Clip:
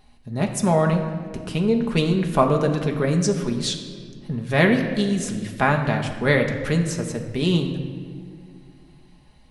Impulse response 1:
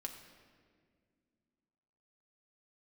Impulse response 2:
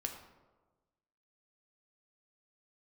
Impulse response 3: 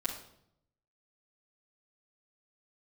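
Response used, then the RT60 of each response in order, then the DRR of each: 1; 2.0, 1.3, 0.70 s; 2.0, 3.0, -9.0 dB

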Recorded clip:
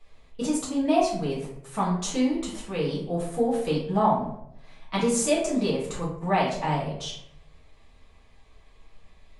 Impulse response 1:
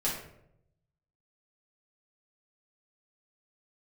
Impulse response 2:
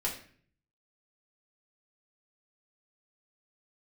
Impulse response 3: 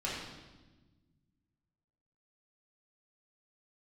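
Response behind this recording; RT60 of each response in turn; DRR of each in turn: 1; 0.75, 0.50, 1.2 s; -7.5, -4.0, -7.5 dB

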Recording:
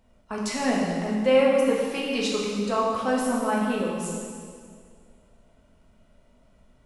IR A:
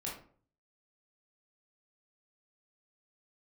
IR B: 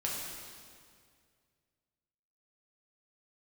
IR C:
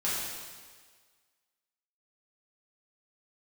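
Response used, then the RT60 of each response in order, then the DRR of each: B; 0.50, 2.1, 1.6 s; -4.5, -4.5, -9.5 dB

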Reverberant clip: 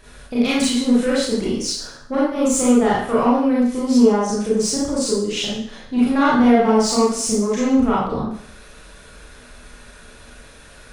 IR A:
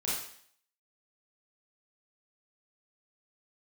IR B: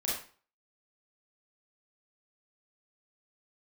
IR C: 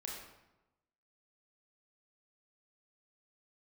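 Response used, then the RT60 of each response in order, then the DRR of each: A; 0.60, 0.40, 1.0 s; -8.0, -6.0, -2.5 dB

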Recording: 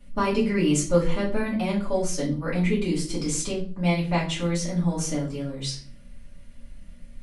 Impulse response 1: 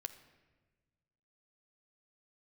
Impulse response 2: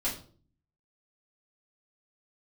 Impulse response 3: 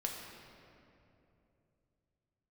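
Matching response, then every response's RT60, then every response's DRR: 2; 1.3, 0.45, 2.9 s; 9.0, -8.5, -0.5 dB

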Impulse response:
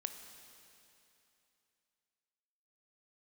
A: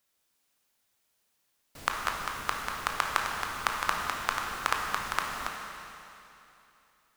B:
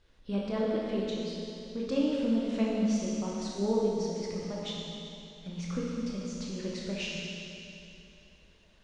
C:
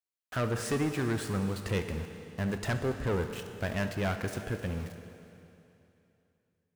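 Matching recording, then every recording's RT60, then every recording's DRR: C; 2.9, 2.9, 2.9 s; 0.0, -5.0, 6.5 dB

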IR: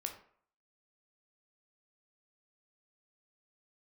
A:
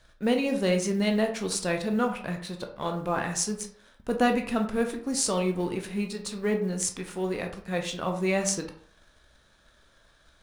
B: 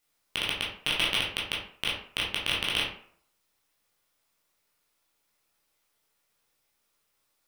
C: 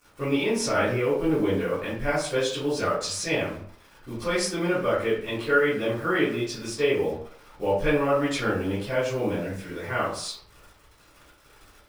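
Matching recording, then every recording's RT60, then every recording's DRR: A; 0.55, 0.55, 0.55 s; 3.5, -5.5, -15.5 dB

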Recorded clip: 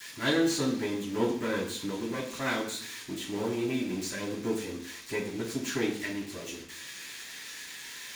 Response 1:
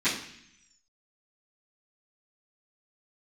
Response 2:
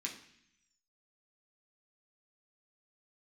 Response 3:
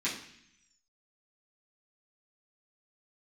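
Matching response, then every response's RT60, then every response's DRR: 1; 0.65, 0.65, 0.65 s; -18.5, -2.0, -10.5 dB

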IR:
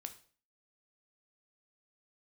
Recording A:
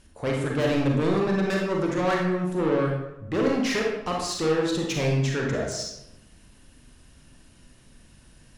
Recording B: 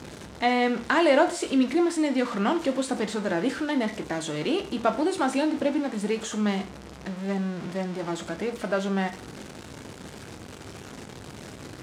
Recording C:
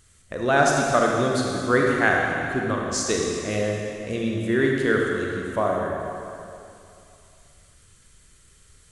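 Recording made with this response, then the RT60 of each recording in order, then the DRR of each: B; 0.90, 0.45, 2.7 s; -1.5, 7.0, -1.0 dB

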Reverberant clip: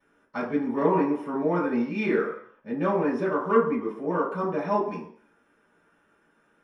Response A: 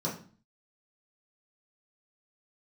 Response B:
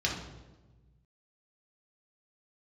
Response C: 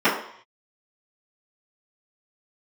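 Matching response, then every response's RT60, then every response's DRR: C; 0.40, 1.2, 0.60 s; -6.0, -2.5, -16.0 dB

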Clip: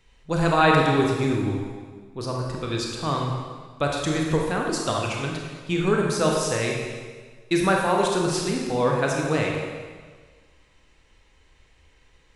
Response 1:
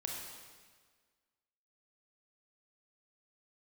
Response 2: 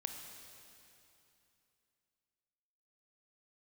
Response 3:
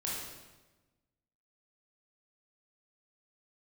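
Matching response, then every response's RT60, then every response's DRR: 1; 1.6, 2.9, 1.2 s; -1.0, 4.0, -5.5 dB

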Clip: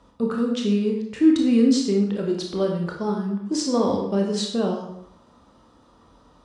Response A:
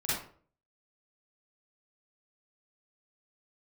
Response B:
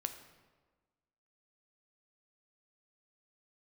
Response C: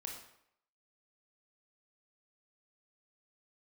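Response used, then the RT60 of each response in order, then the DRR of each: C; 0.50, 1.4, 0.70 s; -10.5, 7.0, 0.0 dB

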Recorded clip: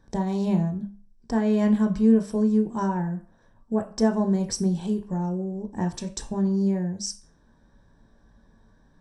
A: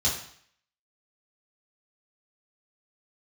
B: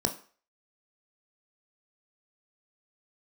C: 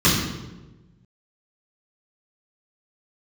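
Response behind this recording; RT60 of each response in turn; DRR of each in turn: B; 0.60, 0.40, 1.2 s; -6.0, 4.5, -9.5 dB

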